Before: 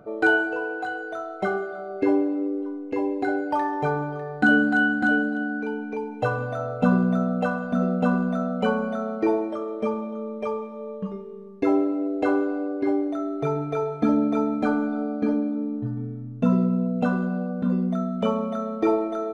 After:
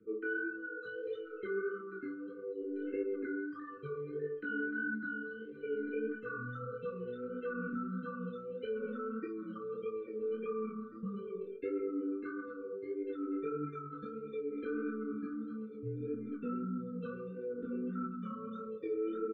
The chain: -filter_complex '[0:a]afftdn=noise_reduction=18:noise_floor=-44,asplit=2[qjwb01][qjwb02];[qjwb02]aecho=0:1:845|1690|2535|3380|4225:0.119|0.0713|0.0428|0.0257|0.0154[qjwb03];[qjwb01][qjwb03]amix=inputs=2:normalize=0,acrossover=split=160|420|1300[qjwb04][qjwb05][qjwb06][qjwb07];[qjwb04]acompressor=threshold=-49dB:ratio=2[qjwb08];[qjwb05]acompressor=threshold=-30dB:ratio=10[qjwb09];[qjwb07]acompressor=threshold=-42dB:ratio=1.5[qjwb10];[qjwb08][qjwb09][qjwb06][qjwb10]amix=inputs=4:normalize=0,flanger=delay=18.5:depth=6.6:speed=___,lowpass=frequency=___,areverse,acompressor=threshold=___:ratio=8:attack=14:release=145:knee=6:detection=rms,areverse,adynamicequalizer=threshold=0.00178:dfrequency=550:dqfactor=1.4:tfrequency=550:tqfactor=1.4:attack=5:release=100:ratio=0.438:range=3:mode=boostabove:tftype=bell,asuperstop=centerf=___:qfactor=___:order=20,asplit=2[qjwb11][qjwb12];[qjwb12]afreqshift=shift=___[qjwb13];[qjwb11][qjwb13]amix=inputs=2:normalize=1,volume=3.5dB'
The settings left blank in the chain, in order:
1.6, 3800, -38dB, 770, 1.2, -0.68